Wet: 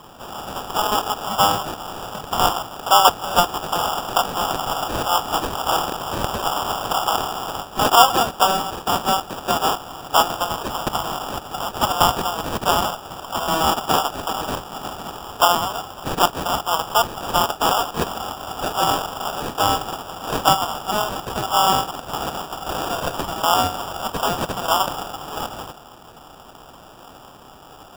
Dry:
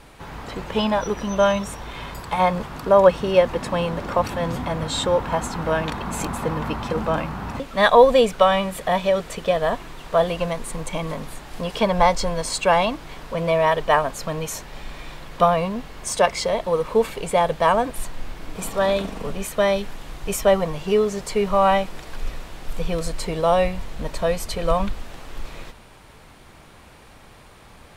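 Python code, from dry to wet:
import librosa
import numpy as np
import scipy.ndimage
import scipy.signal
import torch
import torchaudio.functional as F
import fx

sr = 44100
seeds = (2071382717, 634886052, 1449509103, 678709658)

p1 = fx.spec_clip(x, sr, under_db=20)
p2 = fx.peak_eq(p1, sr, hz=11000.0, db=12.5, octaves=1.6)
p3 = fx.rider(p2, sr, range_db=4, speed_s=0.5)
p4 = p2 + (p3 * librosa.db_to_amplitude(0.0))
p5 = fx.highpass_res(p4, sr, hz=770.0, q=4.9)
p6 = fx.sample_hold(p5, sr, seeds[0], rate_hz=2100.0, jitter_pct=0)
y = p6 * librosa.db_to_amplitude(-11.5)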